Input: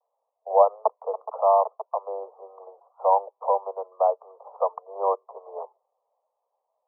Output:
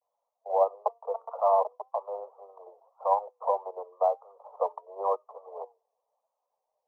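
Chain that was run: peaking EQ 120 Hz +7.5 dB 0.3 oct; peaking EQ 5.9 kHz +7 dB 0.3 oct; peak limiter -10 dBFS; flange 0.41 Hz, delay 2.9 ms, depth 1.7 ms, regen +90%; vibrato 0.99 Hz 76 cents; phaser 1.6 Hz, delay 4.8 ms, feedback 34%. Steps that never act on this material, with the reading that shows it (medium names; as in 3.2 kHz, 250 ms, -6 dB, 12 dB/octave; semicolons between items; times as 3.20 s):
peaking EQ 120 Hz: input has nothing below 360 Hz; peaking EQ 5.9 kHz: input has nothing above 1.3 kHz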